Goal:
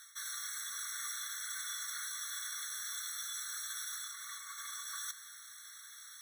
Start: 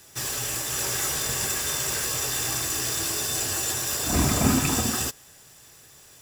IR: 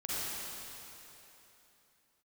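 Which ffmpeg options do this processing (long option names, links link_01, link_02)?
-filter_complex "[0:a]areverse,acompressor=threshold=-37dB:ratio=12,areverse,aeval=exprs='0.0251*(abs(mod(val(0)/0.0251+3,4)-2)-1)':channel_layout=same,afreqshift=-130,aeval=exprs='val(0)+0.000708*(sin(2*PI*50*n/s)+sin(2*PI*2*50*n/s)/2+sin(2*PI*3*50*n/s)/3+sin(2*PI*4*50*n/s)/4+sin(2*PI*5*50*n/s)/5)':channel_layout=same,asplit=2[link_01][link_02];[1:a]atrim=start_sample=2205,lowshelf=frequency=65:gain=-4[link_03];[link_02][link_03]afir=irnorm=-1:irlink=0,volume=-21dB[link_04];[link_01][link_04]amix=inputs=2:normalize=0,afftfilt=real='re*eq(mod(floor(b*sr/1024/1100),2),1)':imag='im*eq(mod(floor(b*sr/1024/1100),2),1)':win_size=1024:overlap=0.75,volume=2.5dB"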